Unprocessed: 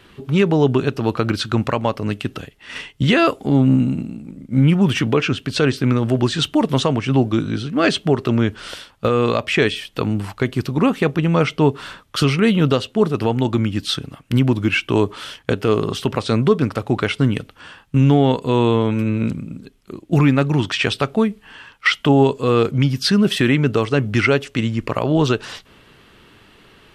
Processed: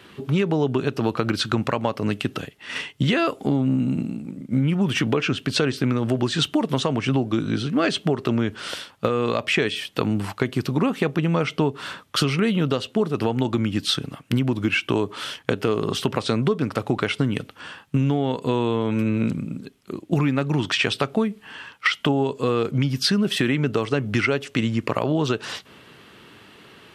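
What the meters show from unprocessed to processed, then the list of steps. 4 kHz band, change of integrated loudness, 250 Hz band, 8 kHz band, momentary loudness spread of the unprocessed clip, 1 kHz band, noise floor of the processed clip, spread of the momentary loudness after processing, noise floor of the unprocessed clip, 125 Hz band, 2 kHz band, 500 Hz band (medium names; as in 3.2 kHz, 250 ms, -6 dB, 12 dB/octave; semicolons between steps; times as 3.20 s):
-2.0 dB, -5.0 dB, -4.5 dB, -1.5 dB, 9 LU, -4.5 dB, -52 dBFS, 6 LU, -52 dBFS, -6.0 dB, -3.5 dB, -5.0 dB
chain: high-pass 110 Hz; compression, threshold -19 dBFS, peak gain reduction 10.5 dB; trim +1.5 dB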